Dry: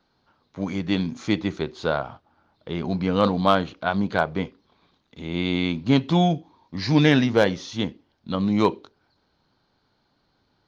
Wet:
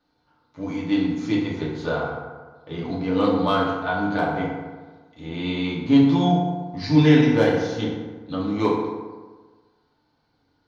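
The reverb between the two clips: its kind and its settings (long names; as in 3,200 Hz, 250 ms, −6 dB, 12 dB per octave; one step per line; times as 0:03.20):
feedback delay network reverb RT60 1.4 s, low-frequency decay 0.95×, high-frequency decay 0.5×, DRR −5.5 dB
level −7.5 dB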